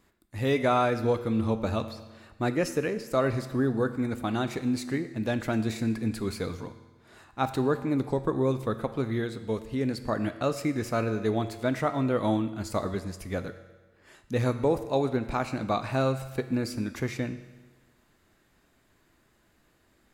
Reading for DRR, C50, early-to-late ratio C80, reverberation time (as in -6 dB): 10.0 dB, 12.0 dB, 13.5 dB, 1.3 s